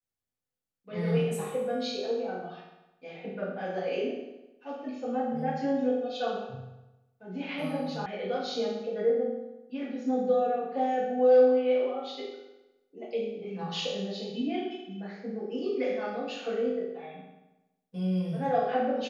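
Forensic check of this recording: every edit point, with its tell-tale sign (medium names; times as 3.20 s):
8.06 s: sound stops dead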